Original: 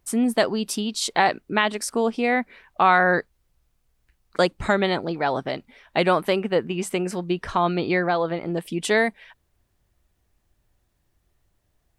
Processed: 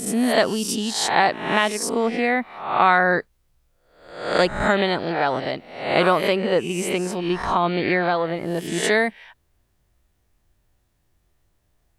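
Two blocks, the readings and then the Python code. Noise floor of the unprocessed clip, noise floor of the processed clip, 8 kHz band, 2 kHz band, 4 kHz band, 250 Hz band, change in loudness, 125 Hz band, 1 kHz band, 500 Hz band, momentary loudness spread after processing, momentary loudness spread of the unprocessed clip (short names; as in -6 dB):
-70 dBFS, -67 dBFS, +3.5 dB, +2.0 dB, +3.0 dB, +1.0 dB, +2.0 dB, +1.0 dB, +2.0 dB, +2.0 dB, 7 LU, 7 LU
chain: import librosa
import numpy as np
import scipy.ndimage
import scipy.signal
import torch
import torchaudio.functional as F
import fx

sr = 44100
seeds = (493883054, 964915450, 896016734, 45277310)

y = fx.spec_swells(x, sr, rise_s=0.65)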